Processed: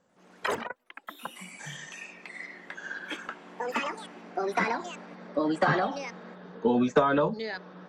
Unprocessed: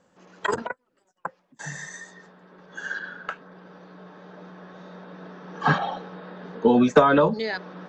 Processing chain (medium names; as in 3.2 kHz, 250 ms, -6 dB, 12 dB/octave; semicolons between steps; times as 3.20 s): ever faster or slower copies 92 ms, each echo +4 st, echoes 3; trim -6.5 dB